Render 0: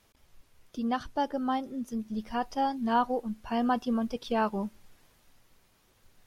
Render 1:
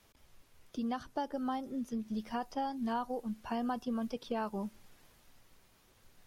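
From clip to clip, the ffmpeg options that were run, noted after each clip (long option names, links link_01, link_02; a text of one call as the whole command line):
ffmpeg -i in.wav -filter_complex "[0:a]acrossover=split=110|1700|5100[link_01][link_02][link_03][link_04];[link_01]acompressor=threshold=-56dB:ratio=4[link_05];[link_02]acompressor=threshold=-34dB:ratio=4[link_06];[link_03]acompressor=threshold=-55dB:ratio=4[link_07];[link_04]acompressor=threshold=-60dB:ratio=4[link_08];[link_05][link_06][link_07][link_08]amix=inputs=4:normalize=0" out.wav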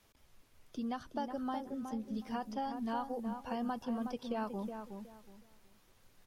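ffmpeg -i in.wav -filter_complex "[0:a]asplit=2[link_01][link_02];[link_02]adelay=368,lowpass=frequency=1600:poles=1,volume=-6.5dB,asplit=2[link_03][link_04];[link_04]adelay=368,lowpass=frequency=1600:poles=1,volume=0.26,asplit=2[link_05][link_06];[link_06]adelay=368,lowpass=frequency=1600:poles=1,volume=0.26[link_07];[link_01][link_03][link_05][link_07]amix=inputs=4:normalize=0,volume=-2.5dB" out.wav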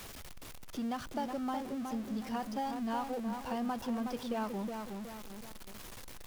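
ffmpeg -i in.wav -af "aeval=exprs='val(0)+0.5*0.00794*sgn(val(0))':channel_layout=same" out.wav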